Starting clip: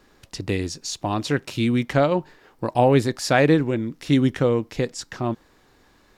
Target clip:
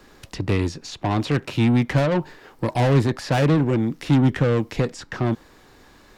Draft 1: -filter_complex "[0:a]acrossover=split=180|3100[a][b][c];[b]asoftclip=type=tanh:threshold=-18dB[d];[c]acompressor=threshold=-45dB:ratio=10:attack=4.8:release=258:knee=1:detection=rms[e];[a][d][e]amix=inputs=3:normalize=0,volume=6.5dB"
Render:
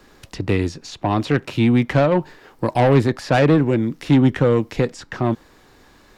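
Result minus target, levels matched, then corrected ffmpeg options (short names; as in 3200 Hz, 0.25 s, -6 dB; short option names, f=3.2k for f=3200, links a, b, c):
soft clip: distortion -5 dB
-filter_complex "[0:a]acrossover=split=180|3100[a][b][c];[b]asoftclip=type=tanh:threshold=-26dB[d];[c]acompressor=threshold=-45dB:ratio=10:attack=4.8:release=258:knee=1:detection=rms[e];[a][d][e]amix=inputs=3:normalize=0,volume=6.5dB"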